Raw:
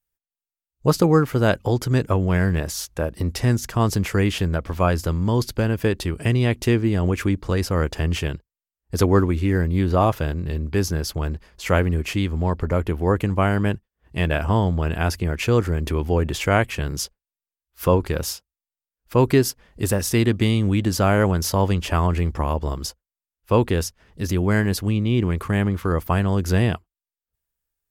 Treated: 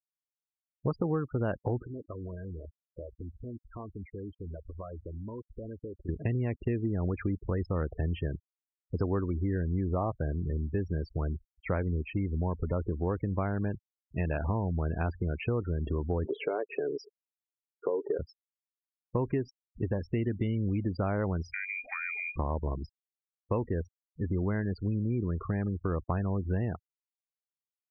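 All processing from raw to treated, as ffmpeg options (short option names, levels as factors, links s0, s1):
-filter_complex "[0:a]asettb=1/sr,asplit=3[s0][s1][s2];[s0]atrim=end=1.854[s3];[s1]atrim=start=1.85:end=6.09,asetpts=PTS-STARTPTS,afade=t=in:d=0.004:c=qsin,afade=t=out:st=4.236:d=0.004:c=qsin,equalizer=f=140:t=o:w=0.99:g=-11.5,acompressor=threshold=0.0224:ratio=4:attack=3.2:release=140:knee=1:detection=peak,aecho=1:1:335:0.075,atrim=end_sample=186984[s4];[s2]atrim=start=6.086[s5];[s3][s4]acrossfade=d=0.004:c1=hsin:c2=qsin[s6];[s6][s5]acrossfade=d=0.004:c1=qsin:c2=hsin,asettb=1/sr,asplit=3[s7][s8][s9];[s7]atrim=end=16.254[s10];[s8]atrim=start=16.25:end=18.19,asetpts=PTS-STARTPTS,afade=t=in:d=0.004:c=qsin,afade=t=out:st=1.936:d=0.004:c=qsin,acompressor=threshold=0.0891:ratio=8:attack=3.2:release=140:knee=1:detection=peak,highpass=f=410:t=q:w=4.8,aecho=1:1:7:0.32,atrim=end_sample=85554[s11];[s9]atrim=start=18.186[s12];[s10][s11]acrossfade=d=0.004:c1=hsin:c2=qsin[s13];[s13][s12]acrossfade=d=0.004:c1=qsin:c2=hsin,asettb=1/sr,asplit=3[s14][s15][s16];[s14]atrim=end=21.534[s17];[s15]atrim=start=21.53:end=22.36,asetpts=PTS-STARTPTS,afade=t=in:d=0.004:c=qsin,afade=t=out:st=0.826:d=0.004:c=qsin,acompressor=threshold=0.0794:ratio=10:attack=3.2:release=140:knee=1:detection=peak,lowpass=f=2100:t=q:w=0.5098,lowpass=f=2100:t=q:w=0.6013,lowpass=f=2100:t=q:w=0.9,lowpass=f=2100:t=q:w=2.563,afreqshift=-2500[s18];[s16]atrim=start=22.356[s19];[s17][s18]acrossfade=d=0.004:c1=hsin:c2=qsin[s20];[s20][s19]acrossfade=d=0.004:c1=qsin:c2=hsin,lowpass=f=1500:p=1,afftfilt=real='re*gte(hypot(re,im),0.0447)':imag='im*gte(hypot(re,im),0.0447)':win_size=1024:overlap=0.75,acompressor=threshold=0.0794:ratio=5,volume=0.562"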